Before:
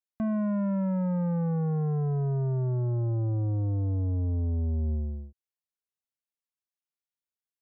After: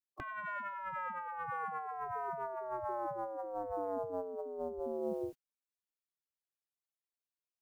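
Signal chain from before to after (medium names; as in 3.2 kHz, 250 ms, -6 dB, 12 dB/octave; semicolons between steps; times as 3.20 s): spectral gate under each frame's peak -20 dB weak; dynamic bell 620 Hz, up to -4 dB, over -59 dBFS, Q 0.89; compressor with a negative ratio -58 dBFS, ratio -1; trim +18 dB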